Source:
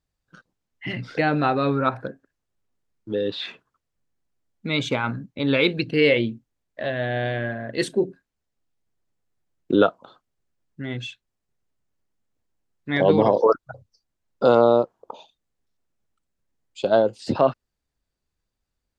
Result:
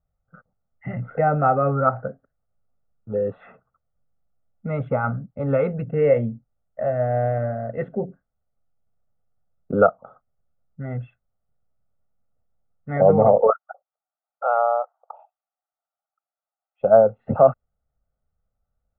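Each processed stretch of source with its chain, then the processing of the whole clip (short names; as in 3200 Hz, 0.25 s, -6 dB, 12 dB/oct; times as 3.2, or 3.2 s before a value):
13.5–16.81 elliptic band-pass 730–3200 Hz, stop band 70 dB + mismatched tape noise reduction decoder only
whole clip: inverse Chebyshev low-pass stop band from 4500 Hz, stop band 60 dB; comb 1.5 ms, depth 98%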